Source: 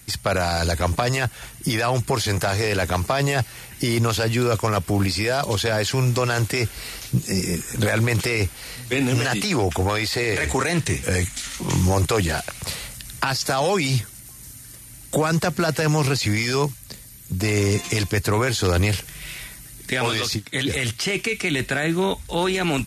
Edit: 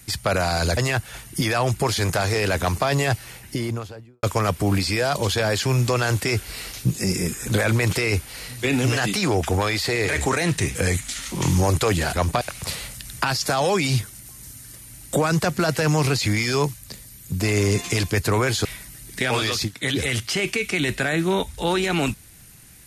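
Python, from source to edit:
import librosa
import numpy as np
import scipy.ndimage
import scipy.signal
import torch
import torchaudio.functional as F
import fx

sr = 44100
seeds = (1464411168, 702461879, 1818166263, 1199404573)

y = fx.studio_fade_out(x, sr, start_s=3.46, length_s=1.05)
y = fx.edit(y, sr, fx.move(start_s=0.77, length_s=0.28, to_s=12.41),
    fx.cut(start_s=18.65, length_s=0.71), tone=tone)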